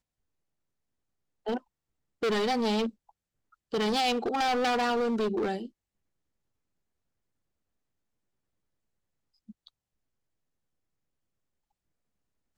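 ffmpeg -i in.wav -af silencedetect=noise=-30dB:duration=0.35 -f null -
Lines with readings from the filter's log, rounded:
silence_start: 0.00
silence_end: 1.47 | silence_duration: 1.47
silence_start: 1.58
silence_end: 2.23 | silence_duration: 0.65
silence_start: 2.88
silence_end: 3.74 | silence_duration: 0.85
silence_start: 5.58
silence_end: 12.57 | silence_duration: 6.99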